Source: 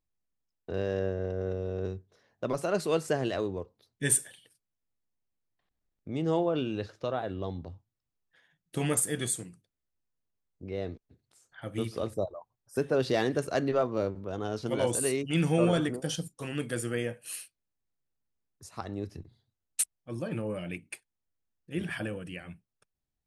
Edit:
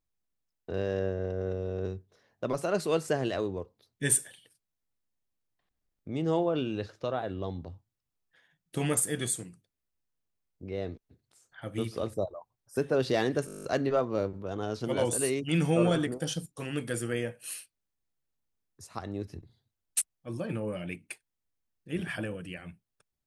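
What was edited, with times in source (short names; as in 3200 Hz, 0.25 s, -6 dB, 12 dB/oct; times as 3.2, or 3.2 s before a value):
13.46 stutter 0.02 s, 10 plays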